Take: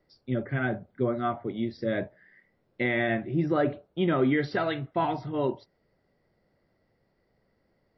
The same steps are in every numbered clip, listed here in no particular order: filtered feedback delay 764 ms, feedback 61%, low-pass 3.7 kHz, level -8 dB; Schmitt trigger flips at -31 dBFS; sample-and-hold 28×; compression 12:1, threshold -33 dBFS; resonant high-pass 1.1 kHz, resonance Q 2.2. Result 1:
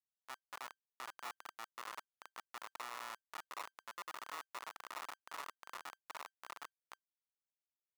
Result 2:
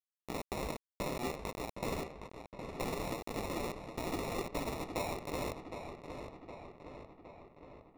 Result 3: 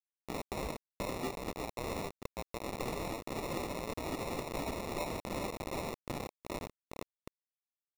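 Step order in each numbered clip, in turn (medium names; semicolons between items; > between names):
filtered feedback delay > compression > Schmitt trigger > sample-and-hold > resonant high-pass; Schmitt trigger > resonant high-pass > compression > sample-and-hold > filtered feedback delay; filtered feedback delay > Schmitt trigger > resonant high-pass > sample-and-hold > compression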